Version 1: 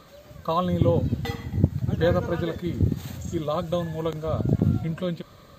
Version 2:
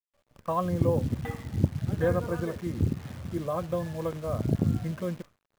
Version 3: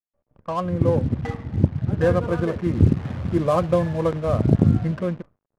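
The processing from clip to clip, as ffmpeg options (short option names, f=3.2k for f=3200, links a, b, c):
-af "lowpass=f=2.4k:w=0.5412,lowpass=f=2.4k:w=1.3066,agate=range=-33dB:threshold=-35dB:ratio=3:detection=peak,acrusher=bits=8:dc=4:mix=0:aa=0.000001,volume=-4dB"
-af "dynaudnorm=f=220:g=7:m=12.5dB,equalizer=f=9.5k:w=4.3:g=7,adynamicsmooth=sensitivity=5:basefreq=880"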